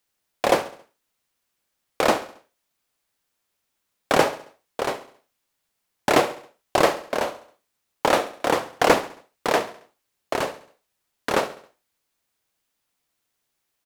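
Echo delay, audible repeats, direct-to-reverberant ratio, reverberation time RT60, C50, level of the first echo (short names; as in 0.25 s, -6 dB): 68 ms, 3, none, none, none, -16.0 dB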